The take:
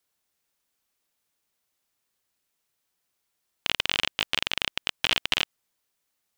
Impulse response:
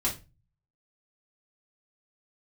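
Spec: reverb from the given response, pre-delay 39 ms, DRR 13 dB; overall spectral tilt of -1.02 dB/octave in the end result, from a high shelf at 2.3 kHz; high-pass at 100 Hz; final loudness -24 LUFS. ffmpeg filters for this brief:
-filter_complex "[0:a]highpass=100,highshelf=f=2300:g=8,asplit=2[s0][s1];[1:a]atrim=start_sample=2205,adelay=39[s2];[s1][s2]afir=irnorm=-1:irlink=0,volume=0.1[s3];[s0][s3]amix=inputs=2:normalize=0,volume=0.75"

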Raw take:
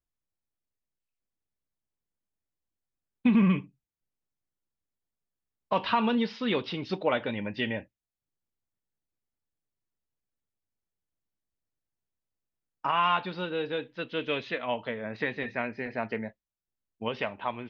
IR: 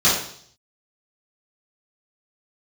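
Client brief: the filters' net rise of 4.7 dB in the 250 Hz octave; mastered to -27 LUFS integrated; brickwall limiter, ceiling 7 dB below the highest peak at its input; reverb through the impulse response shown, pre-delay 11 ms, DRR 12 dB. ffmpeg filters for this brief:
-filter_complex "[0:a]equalizer=f=250:t=o:g=5.5,alimiter=limit=0.168:level=0:latency=1,asplit=2[s0][s1];[1:a]atrim=start_sample=2205,adelay=11[s2];[s1][s2]afir=irnorm=-1:irlink=0,volume=0.0251[s3];[s0][s3]amix=inputs=2:normalize=0,volume=1.19"

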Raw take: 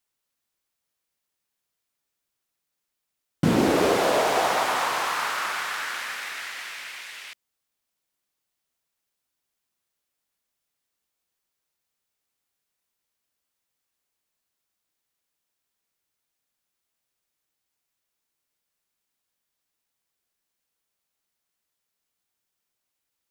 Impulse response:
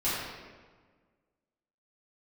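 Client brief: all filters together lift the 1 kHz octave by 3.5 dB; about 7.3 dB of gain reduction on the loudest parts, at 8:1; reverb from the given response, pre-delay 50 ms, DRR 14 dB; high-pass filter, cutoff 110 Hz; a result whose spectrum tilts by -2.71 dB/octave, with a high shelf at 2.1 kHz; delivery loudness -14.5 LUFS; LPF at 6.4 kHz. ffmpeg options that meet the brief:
-filter_complex "[0:a]highpass=110,lowpass=6400,equalizer=f=1000:t=o:g=3,highshelf=f=2100:g=6.5,acompressor=threshold=0.0708:ratio=8,asplit=2[s0][s1];[1:a]atrim=start_sample=2205,adelay=50[s2];[s1][s2]afir=irnorm=-1:irlink=0,volume=0.0631[s3];[s0][s3]amix=inputs=2:normalize=0,volume=4.47"

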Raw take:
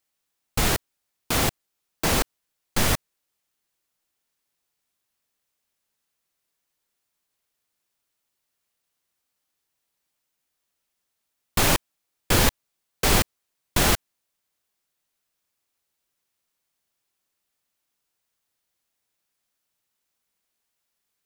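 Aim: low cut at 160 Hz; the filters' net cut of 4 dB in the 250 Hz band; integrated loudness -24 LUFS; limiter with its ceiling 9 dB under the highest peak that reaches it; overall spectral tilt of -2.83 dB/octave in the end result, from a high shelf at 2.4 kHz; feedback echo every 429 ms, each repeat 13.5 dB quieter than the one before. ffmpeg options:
-af "highpass=160,equalizer=f=250:t=o:g=-4,highshelf=f=2400:g=-4.5,alimiter=limit=0.112:level=0:latency=1,aecho=1:1:429|858:0.211|0.0444,volume=2.66"

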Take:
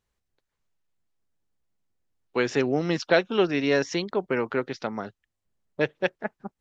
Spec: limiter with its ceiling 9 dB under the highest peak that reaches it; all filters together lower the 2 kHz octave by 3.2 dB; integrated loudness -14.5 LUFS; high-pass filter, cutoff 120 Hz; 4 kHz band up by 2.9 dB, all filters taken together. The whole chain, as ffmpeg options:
-af "highpass=120,equalizer=f=2000:t=o:g=-5.5,equalizer=f=4000:t=o:g=5.5,volume=5.31,alimiter=limit=0.841:level=0:latency=1"

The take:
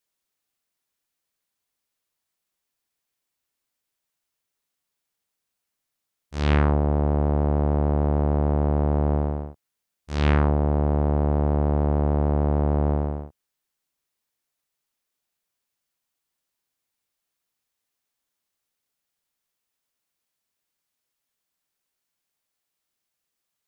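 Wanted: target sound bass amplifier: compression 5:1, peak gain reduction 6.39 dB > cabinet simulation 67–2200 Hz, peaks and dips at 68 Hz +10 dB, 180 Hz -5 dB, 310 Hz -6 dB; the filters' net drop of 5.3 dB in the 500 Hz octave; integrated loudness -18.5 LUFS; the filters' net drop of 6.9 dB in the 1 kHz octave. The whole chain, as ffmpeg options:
-af "equalizer=f=500:t=o:g=-3.5,equalizer=f=1000:t=o:g=-8,acompressor=threshold=0.0708:ratio=5,highpass=f=67:w=0.5412,highpass=f=67:w=1.3066,equalizer=f=68:t=q:w=4:g=10,equalizer=f=180:t=q:w=4:g=-5,equalizer=f=310:t=q:w=4:g=-6,lowpass=f=2200:w=0.5412,lowpass=f=2200:w=1.3066,volume=2"

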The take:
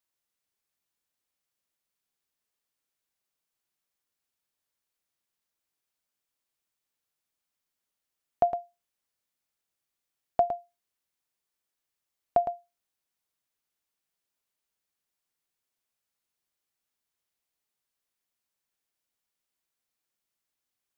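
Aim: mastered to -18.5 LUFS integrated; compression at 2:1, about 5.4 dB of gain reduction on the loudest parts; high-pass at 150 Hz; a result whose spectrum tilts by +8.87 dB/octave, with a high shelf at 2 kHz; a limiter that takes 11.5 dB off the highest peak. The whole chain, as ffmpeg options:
-af "highpass=150,highshelf=f=2000:g=-7,acompressor=threshold=0.0355:ratio=2,volume=13.3,alimiter=limit=0.668:level=0:latency=1"

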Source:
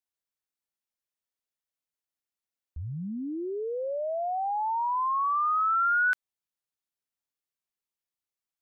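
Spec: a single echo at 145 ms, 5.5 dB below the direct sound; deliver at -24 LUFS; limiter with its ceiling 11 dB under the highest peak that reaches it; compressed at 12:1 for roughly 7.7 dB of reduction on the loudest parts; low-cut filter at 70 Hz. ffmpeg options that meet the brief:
-af "highpass=70,acompressor=threshold=0.0282:ratio=12,alimiter=level_in=6.68:limit=0.0631:level=0:latency=1,volume=0.15,aecho=1:1:145:0.531,volume=8.91"

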